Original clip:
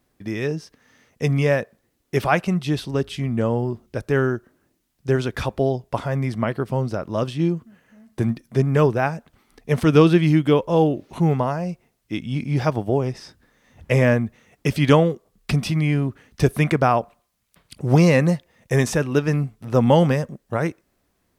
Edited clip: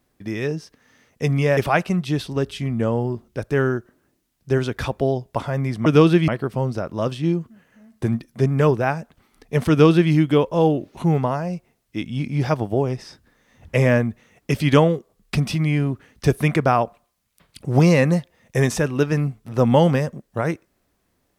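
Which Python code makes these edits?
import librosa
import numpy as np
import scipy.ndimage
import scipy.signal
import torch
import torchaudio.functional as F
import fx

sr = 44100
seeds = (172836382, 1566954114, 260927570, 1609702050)

y = fx.edit(x, sr, fx.cut(start_s=1.57, length_s=0.58),
    fx.duplicate(start_s=9.86, length_s=0.42, to_s=6.44), tone=tone)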